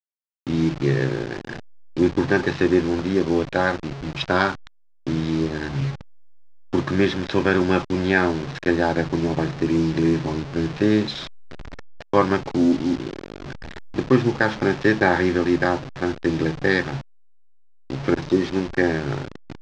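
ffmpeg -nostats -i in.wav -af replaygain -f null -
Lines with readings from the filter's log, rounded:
track_gain = +2.3 dB
track_peak = 0.498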